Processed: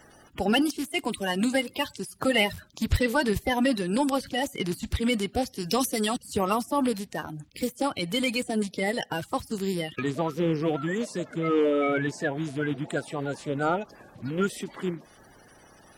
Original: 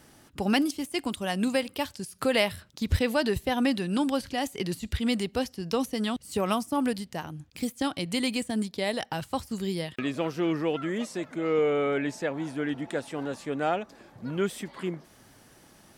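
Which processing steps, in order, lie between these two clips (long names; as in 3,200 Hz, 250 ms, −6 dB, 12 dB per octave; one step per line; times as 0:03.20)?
spectral magnitudes quantised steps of 30 dB
0:05.55–0:06.16: high-shelf EQ 2,900 Hz → 4,200 Hz +11 dB
in parallel at −10 dB: hard clipping −22 dBFS, distortion −15 dB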